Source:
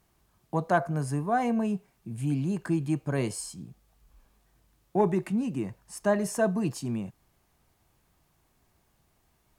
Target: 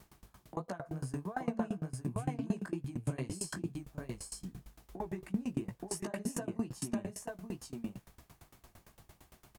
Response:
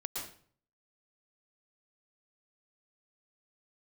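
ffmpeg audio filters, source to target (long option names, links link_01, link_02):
-filter_complex "[0:a]alimiter=limit=-23dB:level=0:latency=1:release=410,acompressor=threshold=-47dB:ratio=3,flanger=delay=15.5:depth=6.6:speed=2.8,asplit=2[link_01][link_02];[link_02]aecho=0:1:875:0.668[link_03];[link_01][link_03]amix=inputs=2:normalize=0,aeval=exprs='val(0)*pow(10,-24*if(lt(mod(8.8*n/s,1),2*abs(8.8)/1000),1-mod(8.8*n/s,1)/(2*abs(8.8)/1000),(mod(8.8*n/s,1)-2*abs(8.8)/1000)/(1-2*abs(8.8)/1000))/20)':channel_layout=same,volume=17dB"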